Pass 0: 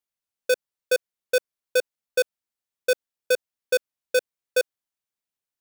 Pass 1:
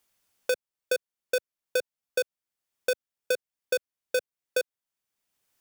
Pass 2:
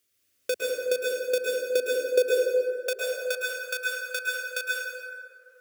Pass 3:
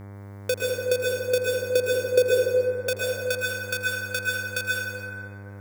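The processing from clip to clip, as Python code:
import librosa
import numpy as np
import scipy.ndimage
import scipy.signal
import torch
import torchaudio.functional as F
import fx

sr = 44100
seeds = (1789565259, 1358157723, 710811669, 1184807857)

y1 = fx.notch(x, sr, hz=4000.0, q=24.0)
y1 = fx.band_squash(y1, sr, depth_pct=70)
y1 = F.gain(torch.from_numpy(y1), -5.0).numpy()
y2 = fx.filter_sweep_highpass(y1, sr, from_hz=98.0, to_hz=1200.0, start_s=0.72, end_s=3.42, q=3.6)
y2 = fx.fixed_phaser(y2, sr, hz=360.0, stages=4)
y2 = fx.rev_plate(y2, sr, seeds[0], rt60_s=2.3, hf_ratio=0.45, predelay_ms=100, drr_db=-4.0)
y3 = fx.dmg_buzz(y2, sr, base_hz=100.0, harmonics=23, level_db=-43.0, tilt_db=-7, odd_only=False)
y3 = y3 + 10.0 ** (-19.0 / 20.0) * np.pad(y3, (int(82 * sr / 1000.0), 0))[:len(y3)]
y3 = F.gain(torch.from_numpy(y3), 2.5).numpy()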